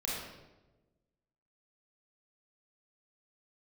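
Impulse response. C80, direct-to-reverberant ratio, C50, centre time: 2.0 dB, -6.0 dB, -1.5 dB, 81 ms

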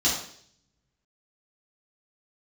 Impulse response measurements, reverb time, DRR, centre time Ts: 0.60 s, -7.0 dB, 41 ms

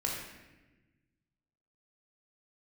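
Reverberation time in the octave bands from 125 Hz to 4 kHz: 2.1 s, 1.8 s, 1.3 s, 1.0 s, 1.2 s, 0.85 s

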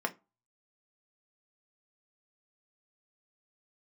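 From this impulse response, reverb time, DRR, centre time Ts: 0.25 s, 4.0 dB, 5 ms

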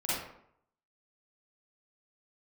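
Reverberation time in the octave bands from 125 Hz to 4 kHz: 0.70 s, 0.70 s, 0.70 s, 0.70 s, 0.55 s, 0.40 s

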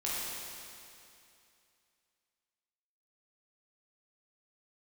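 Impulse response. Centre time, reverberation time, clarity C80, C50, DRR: 174 ms, 2.6 s, -2.0 dB, -4.0 dB, -8.0 dB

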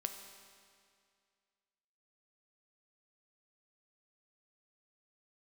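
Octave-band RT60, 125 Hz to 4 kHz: 2.2 s, 2.2 s, 2.2 s, 2.2 s, 2.2 s, 2.0 s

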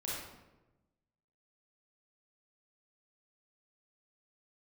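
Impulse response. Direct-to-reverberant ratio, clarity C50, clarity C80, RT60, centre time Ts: -7.0 dB, -2.0 dB, 2.0 dB, 1.1 s, 80 ms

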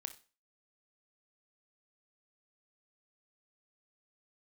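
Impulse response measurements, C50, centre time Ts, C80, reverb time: 13.5 dB, 7 ms, 19.5 dB, 0.35 s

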